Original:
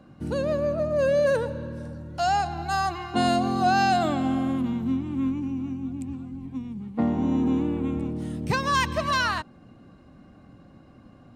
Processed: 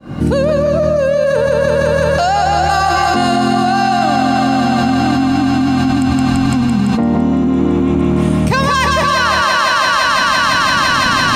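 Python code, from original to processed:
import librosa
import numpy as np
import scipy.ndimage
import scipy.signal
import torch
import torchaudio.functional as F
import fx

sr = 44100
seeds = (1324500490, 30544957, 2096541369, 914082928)

y = fx.fade_in_head(x, sr, length_s=1.03)
y = fx.peak_eq(y, sr, hz=5700.0, db=12.0, octaves=0.3, at=(0.58, 1.0))
y = fx.echo_thinned(y, sr, ms=169, feedback_pct=85, hz=300.0, wet_db=-4)
y = fx.env_flatten(y, sr, amount_pct=100)
y = y * librosa.db_to_amplitude(3.5)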